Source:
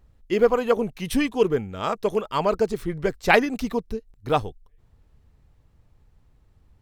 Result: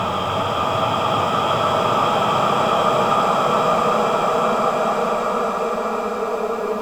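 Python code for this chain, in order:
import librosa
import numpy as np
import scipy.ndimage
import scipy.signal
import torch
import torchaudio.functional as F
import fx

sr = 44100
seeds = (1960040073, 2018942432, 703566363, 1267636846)

y = fx.leveller(x, sr, passes=2)
y = fx.paulstretch(y, sr, seeds[0], factor=36.0, window_s=0.25, from_s=1.8)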